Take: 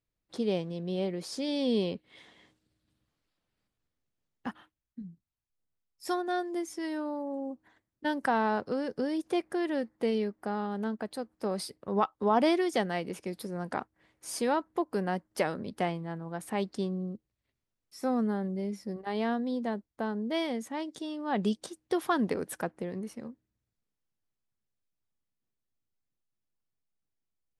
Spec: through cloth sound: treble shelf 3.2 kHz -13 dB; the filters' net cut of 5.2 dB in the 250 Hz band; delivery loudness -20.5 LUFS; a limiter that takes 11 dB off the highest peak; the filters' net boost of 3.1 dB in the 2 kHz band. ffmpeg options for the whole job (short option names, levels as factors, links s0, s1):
-af "equalizer=f=250:t=o:g=-7,equalizer=f=2000:t=o:g=8,alimiter=limit=0.0841:level=0:latency=1,highshelf=f=3200:g=-13,volume=6.31"